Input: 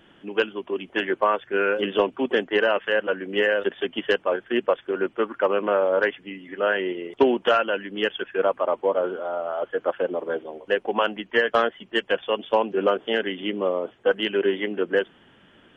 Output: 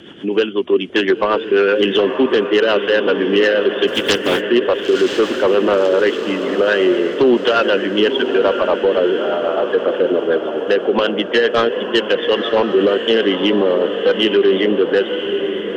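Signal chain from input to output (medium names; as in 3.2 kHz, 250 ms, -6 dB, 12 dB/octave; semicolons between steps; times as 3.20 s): 3.87–4.40 s: spectral contrast reduction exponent 0.42; high-pass 59 Hz; in parallel at +0.5 dB: compression, threshold -33 dBFS, peak gain reduction 18.5 dB; on the sum: rotary cabinet horn 8 Hz; on a send: echo that smears into a reverb 1002 ms, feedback 53%, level -10 dB; on the sum: saturation -13.5 dBFS, distortion -18 dB; high-order bell 1.2 kHz -9.5 dB 2.5 oct; overdrive pedal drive 10 dB, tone 2.9 kHz, clips at -13.5 dBFS; loudness maximiser +18.5 dB; trim -5 dB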